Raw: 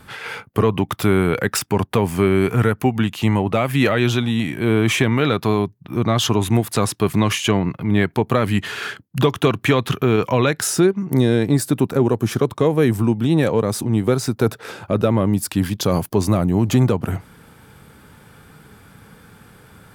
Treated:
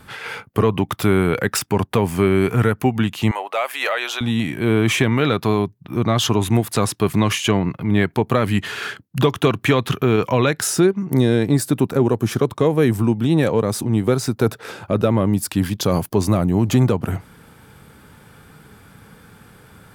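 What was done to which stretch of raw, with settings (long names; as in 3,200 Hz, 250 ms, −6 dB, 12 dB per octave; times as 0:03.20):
0:03.31–0:04.21: high-pass filter 570 Hz 24 dB per octave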